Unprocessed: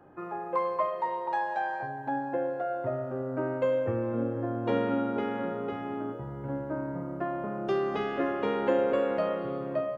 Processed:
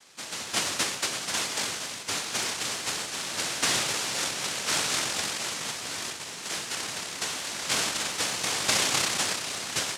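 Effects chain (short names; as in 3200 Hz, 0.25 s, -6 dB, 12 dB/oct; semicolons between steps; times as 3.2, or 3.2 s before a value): noise vocoder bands 1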